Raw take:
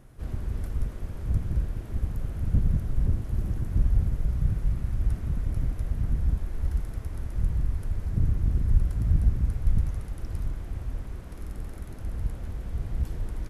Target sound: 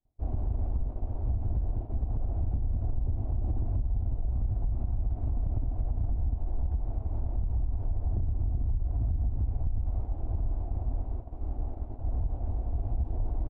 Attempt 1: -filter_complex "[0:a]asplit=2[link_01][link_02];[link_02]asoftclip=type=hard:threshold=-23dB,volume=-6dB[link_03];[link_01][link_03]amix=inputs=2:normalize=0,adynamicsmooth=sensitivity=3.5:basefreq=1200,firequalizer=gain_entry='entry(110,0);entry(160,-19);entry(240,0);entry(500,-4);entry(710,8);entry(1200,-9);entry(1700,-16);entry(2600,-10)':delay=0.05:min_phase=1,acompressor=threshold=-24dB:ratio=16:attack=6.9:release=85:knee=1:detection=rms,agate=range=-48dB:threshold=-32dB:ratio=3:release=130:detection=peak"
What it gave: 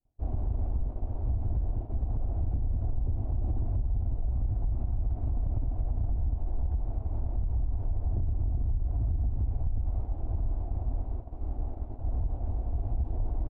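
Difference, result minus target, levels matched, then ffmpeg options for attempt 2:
hard clipping: distortion +16 dB
-filter_complex "[0:a]asplit=2[link_01][link_02];[link_02]asoftclip=type=hard:threshold=-14dB,volume=-6dB[link_03];[link_01][link_03]amix=inputs=2:normalize=0,adynamicsmooth=sensitivity=3.5:basefreq=1200,firequalizer=gain_entry='entry(110,0);entry(160,-19);entry(240,0);entry(500,-4);entry(710,8);entry(1200,-9);entry(1700,-16);entry(2600,-10)':delay=0.05:min_phase=1,acompressor=threshold=-24dB:ratio=16:attack=6.9:release=85:knee=1:detection=rms,agate=range=-48dB:threshold=-32dB:ratio=3:release=130:detection=peak"

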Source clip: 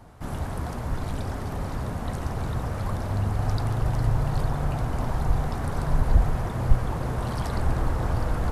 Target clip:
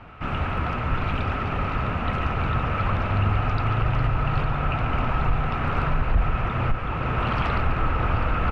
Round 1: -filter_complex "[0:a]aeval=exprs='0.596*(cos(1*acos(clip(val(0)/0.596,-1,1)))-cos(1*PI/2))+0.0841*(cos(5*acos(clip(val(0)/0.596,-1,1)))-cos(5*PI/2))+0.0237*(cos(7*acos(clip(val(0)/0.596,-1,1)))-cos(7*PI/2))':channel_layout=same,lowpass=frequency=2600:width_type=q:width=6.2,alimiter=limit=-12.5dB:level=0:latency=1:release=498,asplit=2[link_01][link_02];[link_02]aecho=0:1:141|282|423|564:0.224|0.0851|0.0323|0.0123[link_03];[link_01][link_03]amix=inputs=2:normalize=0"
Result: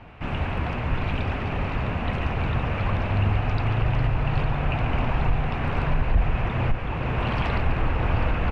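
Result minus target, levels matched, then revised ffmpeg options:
1,000 Hz band −3.0 dB
-filter_complex "[0:a]aeval=exprs='0.596*(cos(1*acos(clip(val(0)/0.596,-1,1)))-cos(1*PI/2))+0.0841*(cos(5*acos(clip(val(0)/0.596,-1,1)))-cos(5*PI/2))+0.0237*(cos(7*acos(clip(val(0)/0.596,-1,1)))-cos(7*PI/2))':channel_layout=same,lowpass=frequency=2600:width_type=q:width=6.2,equalizer=frequency=1300:width=6.9:gain=13.5,alimiter=limit=-12.5dB:level=0:latency=1:release=498,asplit=2[link_01][link_02];[link_02]aecho=0:1:141|282|423|564:0.224|0.0851|0.0323|0.0123[link_03];[link_01][link_03]amix=inputs=2:normalize=0"

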